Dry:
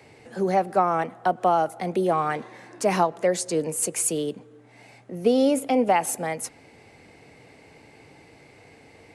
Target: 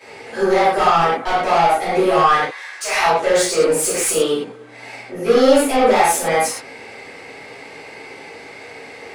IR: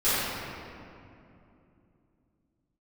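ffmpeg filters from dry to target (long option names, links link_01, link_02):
-filter_complex "[0:a]asettb=1/sr,asplit=3[link_01][link_02][link_03];[link_01]atrim=end=2.374[link_04];[link_02]atrim=start=2.37:end=3.03,asetpts=PTS-STARTPTS,afade=type=in:duration=0.004:curve=qsin,afade=type=out:start_time=0.656:duration=0.004:curve=qsin,highpass=1400[link_05];[link_03]atrim=start=3.026[link_06];[link_04][link_05]acrossfade=duration=0.004:curve1=hsin:curve2=qsin[link_07];[link_07][link_06]acrossfade=duration=0.004:curve1=qsin:curve2=hsin,asplit=2[link_08][link_09];[link_09]highpass=frequency=720:poles=1,volume=21dB,asoftclip=type=tanh:threshold=-9dB[link_10];[link_08][link_10]amix=inputs=2:normalize=0,lowpass=frequency=7300:poles=1,volume=-6dB[link_11];[1:a]atrim=start_sample=2205,atrim=end_sample=6174[link_12];[link_11][link_12]afir=irnorm=-1:irlink=0,volume=-10.5dB"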